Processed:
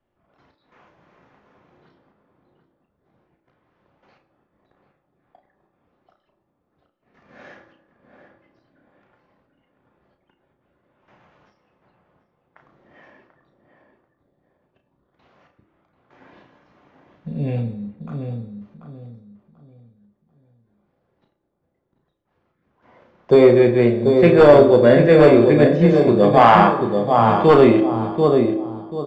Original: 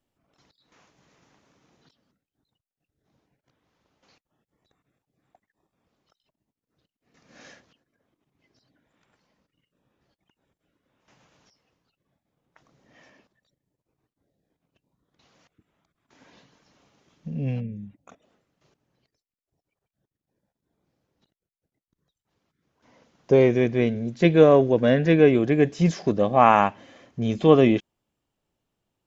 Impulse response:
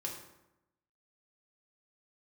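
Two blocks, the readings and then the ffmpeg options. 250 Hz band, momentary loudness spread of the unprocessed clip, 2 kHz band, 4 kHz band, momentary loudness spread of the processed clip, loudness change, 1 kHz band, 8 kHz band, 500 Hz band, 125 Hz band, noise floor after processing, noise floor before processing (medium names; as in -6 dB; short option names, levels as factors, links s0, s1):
+6.0 dB, 13 LU, +6.0 dB, +5.0 dB, 19 LU, +6.0 dB, +7.5 dB, no reading, +8.0 dB, +5.0 dB, -72 dBFS, under -85 dBFS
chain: -filter_complex "[0:a]asplit=2[s0][s1];[s1]adelay=738,lowpass=f=1100:p=1,volume=0.562,asplit=2[s2][s3];[s3]adelay=738,lowpass=f=1100:p=1,volume=0.31,asplit=2[s4][s5];[s5]adelay=738,lowpass=f=1100:p=1,volume=0.31,asplit=2[s6][s7];[s7]adelay=738,lowpass=f=1100:p=1,volume=0.31[s8];[s0][s2][s4][s6][s8]amix=inputs=5:normalize=0,acrossover=split=250|830[s9][s10][s11];[s10]acrusher=samples=11:mix=1:aa=0.000001[s12];[s9][s12][s11]amix=inputs=3:normalize=0,aeval=exprs='0.447*(abs(mod(val(0)/0.447+3,4)-2)-1)':c=same,lowpass=1700,asplit=2[s13][s14];[s14]adelay=34,volume=0.501[s15];[s13][s15]amix=inputs=2:normalize=0,asplit=2[s16][s17];[s17]highpass=270[s18];[1:a]atrim=start_sample=2205,lowshelf=f=220:g=-10[s19];[s18][s19]afir=irnorm=-1:irlink=0,volume=0.944[s20];[s16][s20]amix=inputs=2:normalize=0,asoftclip=type=tanh:threshold=0.562,volume=1.68"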